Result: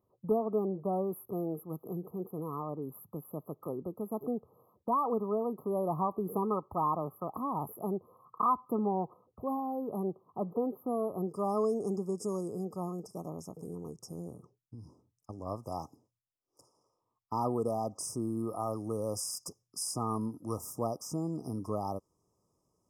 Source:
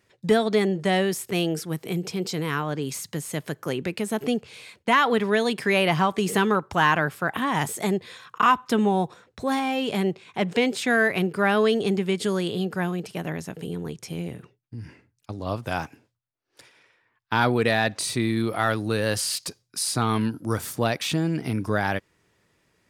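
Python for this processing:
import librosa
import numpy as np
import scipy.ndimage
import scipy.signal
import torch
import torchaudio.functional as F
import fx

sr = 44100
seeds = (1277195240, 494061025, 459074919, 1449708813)

y = fx.brickwall_bandstop(x, sr, low_hz=1300.0, high_hz=fx.steps((0.0, 11000.0), (11.27, 4900.0)))
y = fx.dynamic_eq(y, sr, hz=130.0, q=1.1, threshold_db=-38.0, ratio=4.0, max_db=-4)
y = F.gain(torch.from_numpy(y), -8.5).numpy()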